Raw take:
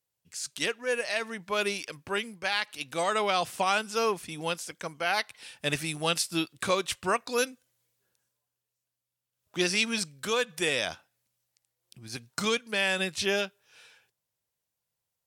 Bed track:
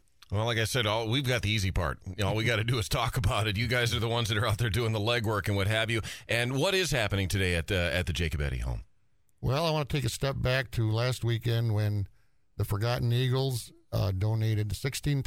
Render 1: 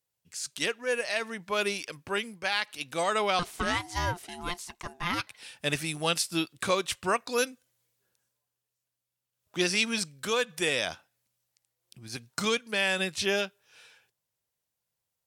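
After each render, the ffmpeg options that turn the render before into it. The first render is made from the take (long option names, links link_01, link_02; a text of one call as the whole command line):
ffmpeg -i in.wav -filter_complex "[0:a]asettb=1/sr,asplit=3[link_01][link_02][link_03];[link_01]atrim=end=3.394[link_04];[link_02]atrim=start=3.39:end=5.27,asetpts=PTS-STARTPTS,afade=type=in:duration=0.004:curve=qsin,afade=type=out:start_time=1.876:duration=0.004:curve=qsin,aeval=exprs='val(0)*sin(2*PI*530*n/s)':channel_layout=same[link_05];[link_03]atrim=start=5.266[link_06];[link_04][link_05]acrossfade=duration=0.004:curve1=hsin:curve2=qsin[link_07];[link_07][link_06]acrossfade=duration=0.004:curve1=qsin:curve2=hsin" out.wav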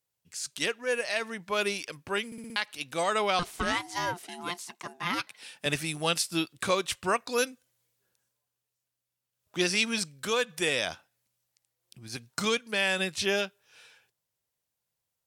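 ffmpeg -i in.wav -filter_complex "[0:a]asettb=1/sr,asplit=3[link_01][link_02][link_03];[link_01]atrim=end=3.724[link_04];[link_02]atrim=start=3.72:end=5.66,asetpts=PTS-STARTPTS,afade=type=in:duration=0.004:curve=qsin,afade=type=out:start_time=1.936:duration=0.004:curve=qsin,highpass=frequency=150:width=0.5412,highpass=frequency=150:width=1.3066[link_05];[link_03]atrim=start=5.656[link_06];[link_04][link_05]acrossfade=duration=0.004:curve1=hsin:curve2=qsin[link_07];[link_07][link_06]acrossfade=duration=0.004:curve1=qsin:curve2=hsin,asplit=6[link_08][link_09][link_10][link_11][link_12][link_13];[link_08]atrim=end=2.322[link_14];[link_09]atrim=start=2.258:end=2.322[link_15];[link_10]atrim=start=2.258:end=2.322[link_16];[link_11]atrim=start=2.258:end=2.322[link_17];[link_12]atrim=start=2.258:end=2.322[link_18];[link_13]atrim=start=2.558[link_19];[link_14][link_15]acrossfade=duration=0.004:curve1=hsin:curve2=hsin[link_20];[link_20][link_16]acrossfade=duration=0.004:curve1=hsin:curve2=hsin[link_21];[link_21][link_17]acrossfade=duration=0.004:curve1=hsin:curve2=hsin[link_22];[link_22][link_18]acrossfade=duration=0.004:curve1=hsin:curve2=hsin[link_23];[link_23][link_19]acrossfade=duration=0.004:curve1=hsin:curve2=hsin" out.wav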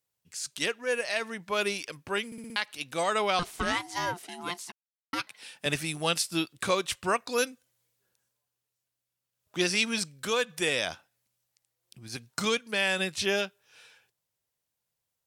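ffmpeg -i in.wav -filter_complex "[0:a]asplit=3[link_01][link_02][link_03];[link_01]atrim=end=4.72,asetpts=PTS-STARTPTS,afade=type=out:start_time=4.716:duration=0.004:curve=hsin[link_04];[link_02]atrim=start=4.72:end=5.13,asetpts=PTS-STARTPTS,volume=0[link_05];[link_03]atrim=start=5.13,asetpts=PTS-STARTPTS,afade=type=in:duration=0.004:curve=hsin[link_06];[link_04][link_05][link_06]concat=n=3:v=0:a=1" out.wav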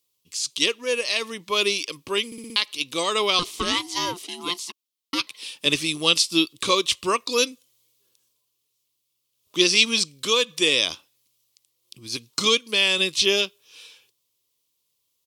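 ffmpeg -i in.wav -filter_complex "[0:a]acrossover=split=8500[link_01][link_02];[link_02]acompressor=threshold=-53dB:ratio=4:attack=1:release=60[link_03];[link_01][link_03]amix=inputs=2:normalize=0,firequalizer=gain_entry='entry(190,0);entry(300,9);entry(490,5);entry(730,-6);entry(1100,8);entry(1500,-7);entry(2200,5);entry(3200,13);entry(8100,9);entry(12000,11)':delay=0.05:min_phase=1" out.wav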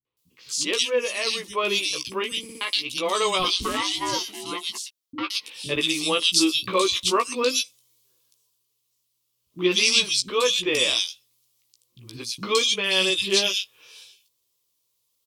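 ffmpeg -i in.wav -filter_complex "[0:a]asplit=2[link_01][link_02];[link_02]adelay=16,volume=-5dB[link_03];[link_01][link_03]amix=inputs=2:normalize=0,acrossover=split=240|2700[link_04][link_05][link_06];[link_05]adelay=50[link_07];[link_06]adelay=170[link_08];[link_04][link_07][link_08]amix=inputs=3:normalize=0" out.wav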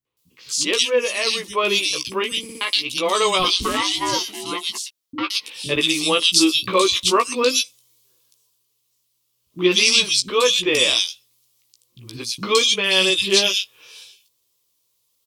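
ffmpeg -i in.wav -af "volume=4.5dB,alimiter=limit=-3dB:level=0:latency=1" out.wav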